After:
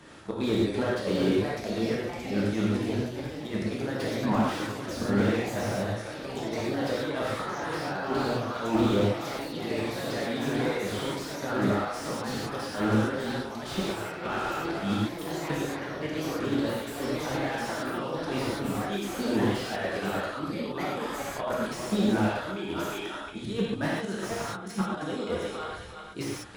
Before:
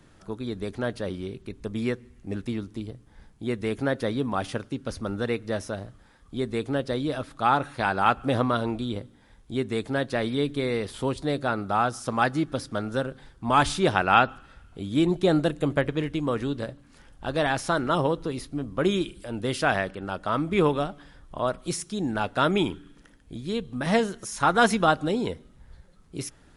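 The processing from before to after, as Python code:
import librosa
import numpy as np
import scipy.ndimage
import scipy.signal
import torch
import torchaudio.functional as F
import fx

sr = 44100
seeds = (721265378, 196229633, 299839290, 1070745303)

p1 = x + fx.echo_thinned(x, sr, ms=359, feedback_pct=42, hz=500.0, wet_db=-19.5, dry=0)
p2 = fx.over_compress(p1, sr, threshold_db=-30.0, ratio=-0.5)
p3 = fx.high_shelf(p2, sr, hz=9400.0, db=-7.5)
p4 = fx.hum_notches(p3, sr, base_hz=60, count=9)
p5 = fx.level_steps(p4, sr, step_db=16)
p6 = p4 + F.gain(torch.from_numpy(p5), 1.0).numpy()
p7 = fx.highpass(p6, sr, hz=240.0, slope=6)
p8 = fx.auto_swell(p7, sr, attack_ms=151.0)
p9 = fx.rev_gated(p8, sr, seeds[0], gate_ms=160, shape='flat', drr_db=-3.5)
p10 = fx.echo_pitch(p9, sr, ms=756, semitones=3, count=3, db_per_echo=-6.0)
y = fx.slew_limit(p10, sr, full_power_hz=51.0)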